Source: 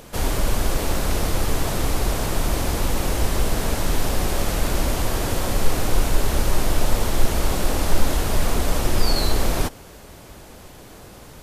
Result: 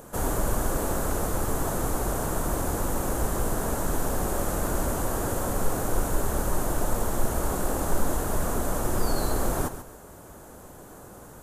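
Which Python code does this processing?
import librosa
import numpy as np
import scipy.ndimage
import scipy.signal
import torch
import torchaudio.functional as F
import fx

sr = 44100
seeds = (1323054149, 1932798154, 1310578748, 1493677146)

p1 = fx.band_shelf(x, sr, hz=3300.0, db=-12.0, octaves=1.7)
p2 = p1 + fx.echo_feedback(p1, sr, ms=137, feedback_pct=27, wet_db=-11.5, dry=0)
p3 = fx.rider(p2, sr, range_db=10, speed_s=2.0)
p4 = fx.low_shelf(p3, sr, hz=99.0, db=-6.5)
y = p4 * 10.0 ** (-2.5 / 20.0)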